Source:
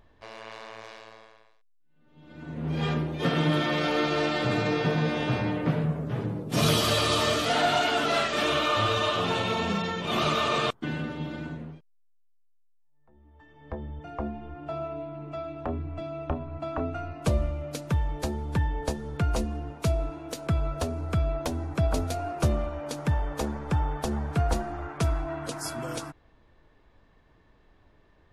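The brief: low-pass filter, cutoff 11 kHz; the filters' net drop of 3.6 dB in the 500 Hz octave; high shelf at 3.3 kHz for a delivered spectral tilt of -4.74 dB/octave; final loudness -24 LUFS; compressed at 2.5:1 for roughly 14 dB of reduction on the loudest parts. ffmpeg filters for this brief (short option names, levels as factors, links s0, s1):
-af "lowpass=11000,equalizer=f=500:t=o:g=-4.5,highshelf=f=3300:g=-6.5,acompressor=threshold=0.00708:ratio=2.5,volume=7.5"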